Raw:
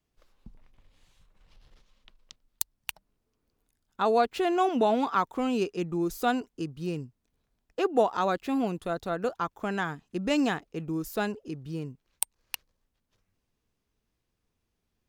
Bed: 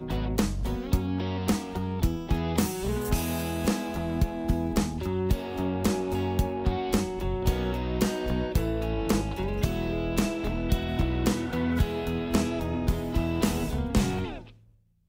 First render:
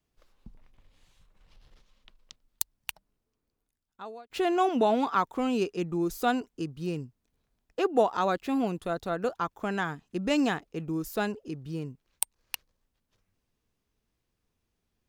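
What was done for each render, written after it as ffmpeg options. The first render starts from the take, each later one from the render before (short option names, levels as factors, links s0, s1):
-filter_complex "[0:a]asplit=2[s0][s1];[s0]atrim=end=4.3,asetpts=PTS-STARTPTS,afade=t=out:st=2.76:d=1.54[s2];[s1]atrim=start=4.3,asetpts=PTS-STARTPTS,afade=t=in:d=0.004:c=hsin[s3];[s2][s3]concat=n=2:v=0:a=1"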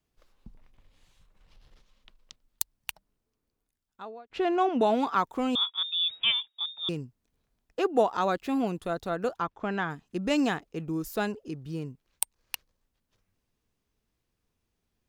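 -filter_complex "[0:a]asettb=1/sr,asplit=3[s0][s1][s2];[s0]atrim=end=4.054[s3];[s1]atrim=start=4.05:end=4.81,asetpts=PTS-STARTPTS,afade=t=in:d=0.004:c=qsin,afade=t=out:st=0.756:d=0.004:c=qsin,adynamicsmooth=sensitivity=1.5:basefreq=3500[s4];[s2]atrim=start=4.806[s5];[s3][s4]acrossfade=d=0.004:c1=hsin:c2=qsin[s6];[s6][s5]acrossfade=d=0.004:c1=qsin:c2=hsin,asettb=1/sr,asplit=3[s7][s8][s9];[s7]atrim=end=5.554[s10];[s8]atrim=start=5.55:end=6.89,asetpts=PTS-STARTPTS,afade=t=in:d=0.004:c=qsin,afade=t=out:st=1.336:d=0.004:c=qsin,lowpass=f=3200:t=q:w=0.5098,lowpass=f=3200:t=q:w=0.6013,lowpass=f=3200:t=q:w=0.9,lowpass=f=3200:t=q:w=2.563,afreqshift=-3800[s11];[s9]atrim=start=6.886[s12];[s10][s11]acrossfade=d=0.004:c1=hsin:c2=qsin[s13];[s13][s12]acrossfade=d=0.004:c1=qsin:c2=hsin,asplit=3[s14][s15][s16];[s14]afade=t=out:st=9.41:d=0.02[s17];[s15]lowpass=3900,afade=t=in:st=9.41:d=0.02,afade=t=out:st=9.89:d=0.02[s18];[s16]afade=t=in:st=9.89:d=0.02[s19];[s17][s18][s19]amix=inputs=3:normalize=0"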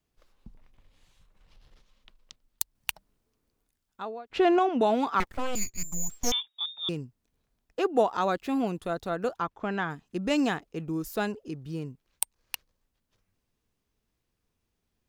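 -filter_complex "[0:a]asettb=1/sr,asplit=3[s0][s1][s2];[s0]atrim=end=2.754[s3];[s1]atrim=start=2.75:end=4.59,asetpts=PTS-STARTPTS,afade=t=in:d=0.004:c=qsin,afade=t=out:st=1.836:d=0.004:c=qsin,acontrast=28[s4];[s2]atrim=start=4.586[s5];[s3][s4]acrossfade=d=0.004:c1=hsin:c2=qsin[s6];[s6][s5]acrossfade=d=0.004:c1=qsin:c2=hsin,asettb=1/sr,asplit=3[s7][s8][s9];[s7]atrim=end=5.204[s10];[s8]atrim=start=5.2:end=6.32,asetpts=PTS-STARTPTS,afade=t=in:d=0.004:c=qsin,afade=t=out:st=1.116:d=0.004:c=qsin,aeval=exprs='abs(val(0))':c=same[s11];[s9]atrim=start=6.316[s12];[s10][s11]acrossfade=d=0.004:c1=hsin:c2=qsin[s13];[s13][s12]acrossfade=d=0.004:c1=qsin:c2=hsin"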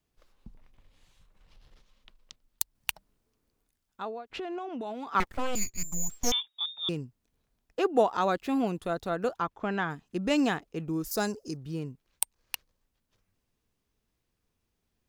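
-filter_complex "[0:a]asettb=1/sr,asplit=3[s0][s1][s2];[s0]atrim=end=4.314[s3];[s1]atrim=start=4.31:end=5.15,asetpts=PTS-STARTPTS,afade=t=in:d=0.004:c=qsin,afade=t=out:st=0.836:d=0.004:c=qsin,acompressor=threshold=0.0178:ratio=5:attack=3.2:release=140:knee=1:detection=peak[s4];[s2]atrim=start=5.146[s5];[s3][s4]acrossfade=d=0.004:c1=hsin:c2=qsin[s6];[s6][s5]acrossfade=d=0.004:c1=qsin:c2=hsin,asettb=1/sr,asplit=3[s7][s8][s9];[s7]atrim=end=11.114[s10];[s8]atrim=start=11.11:end=11.57,asetpts=PTS-STARTPTS,afade=t=in:d=0.004:c=qsin,afade=t=out:st=0.456:d=0.004:c=qsin,highshelf=f=4100:t=q:w=3:g=8.5[s11];[s9]atrim=start=11.566[s12];[s10][s11]acrossfade=d=0.004:c1=hsin:c2=qsin[s13];[s13][s12]acrossfade=d=0.004:c1=qsin:c2=hsin"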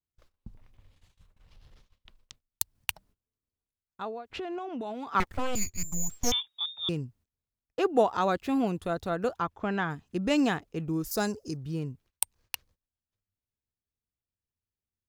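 -af "agate=range=0.1:threshold=0.001:ratio=16:detection=peak,equalizer=f=88:w=1.3:g=9.5"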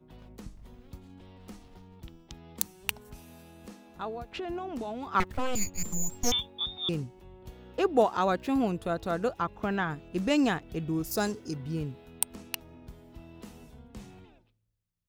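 -filter_complex "[1:a]volume=0.0841[s0];[0:a][s0]amix=inputs=2:normalize=0"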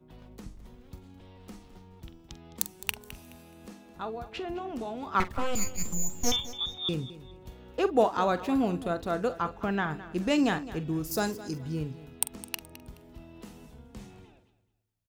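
-filter_complex "[0:a]asplit=2[s0][s1];[s1]adelay=45,volume=0.211[s2];[s0][s2]amix=inputs=2:normalize=0,aecho=1:1:212|424|636:0.158|0.0428|0.0116"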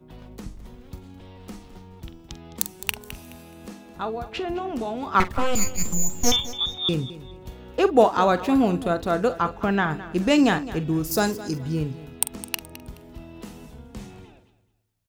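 -af "volume=2.24,alimiter=limit=0.794:level=0:latency=1"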